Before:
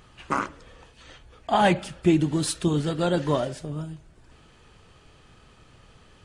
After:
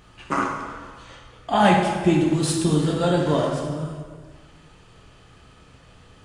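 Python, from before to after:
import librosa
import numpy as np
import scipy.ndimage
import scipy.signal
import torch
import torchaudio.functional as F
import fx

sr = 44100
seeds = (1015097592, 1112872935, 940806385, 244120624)

y = fx.rev_plate(x, sr, seeds[0], rt60_s=1.6, hf_ratio=0.7, predelay_ms=0, drr_db=-1.0)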